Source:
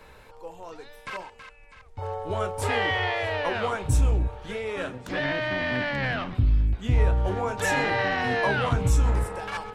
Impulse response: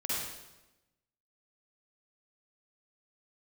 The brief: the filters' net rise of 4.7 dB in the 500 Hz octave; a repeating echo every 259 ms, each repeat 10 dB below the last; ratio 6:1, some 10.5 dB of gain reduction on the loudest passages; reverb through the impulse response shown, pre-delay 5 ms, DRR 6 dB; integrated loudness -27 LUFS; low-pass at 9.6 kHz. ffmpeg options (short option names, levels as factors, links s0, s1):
-filter_complex "[0:a]lowpass=9600,equalizer=f=500:t=o:g=5.5,acompressor=threshold=0.0398:ratio=6,aecho=1:1:259|518|777|1036:0.316|0.101|0.0324|0.0104,asplit=2[s0][s1];[1:a]atrim=start_sample=2205,adelay=5[s2];[s1][s2]afir=irnorm=-1:irlink=0,volume=0.266[s3];[s0][s3]amix=inputs=2:normalize=0,volume=1.68"